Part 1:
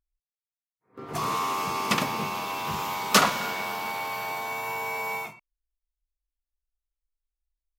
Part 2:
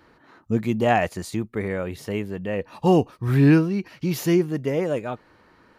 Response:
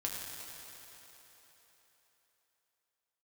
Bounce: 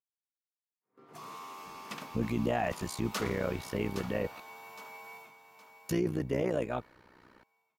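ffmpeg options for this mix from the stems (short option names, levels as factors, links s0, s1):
-filter_complex "[0:a]highpass=150,volume=0.133,asplit=2[s0][s1];[s1]volume=0.355[s2];[1:a]tremolo=f=62:d=0.889,adelay=1650,volume=0.944,asplit=3[s3][s4][s5];[s3]atrim=end=4.4,asetpts=PTS-STARTPTS,afade=t=out:st=4.396:d=0.004:c=hsin[s6];[s4]atrim=start=4.4:end=5.89,asetpts=PTS-STARTPTS,volume=0[s7];[s5]atrim=start=5.89,asetpts=PTS-STARTPTS,afade=t=in:d=0.004:c=hsin[s8];[s6][s7][s8]concat=n=3:v=0:a=1[s9];[s2]aecho=0:1:815|1630|2445|3260|4075:1|0.34|0.116|0.0393|0.0134[s10];[s0][s9][s10]amix=inputs=3:normalize=0,alimiter=limit=0.0841:level=0:latency=1:release=13"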